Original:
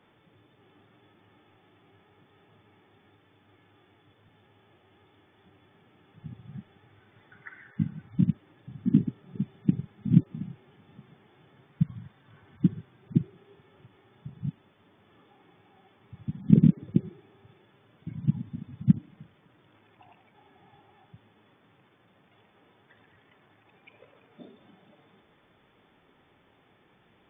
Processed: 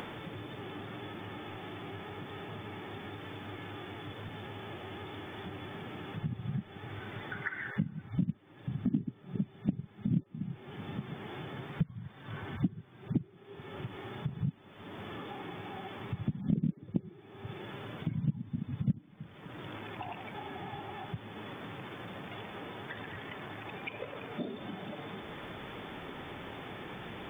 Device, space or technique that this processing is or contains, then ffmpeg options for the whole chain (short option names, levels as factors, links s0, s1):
upward and downward compression: -af "acompressor=mode=upward:threshold=0.00316:ratio=2.5,acompressor=threshold=0.00447:ratio=4,volume=5.01"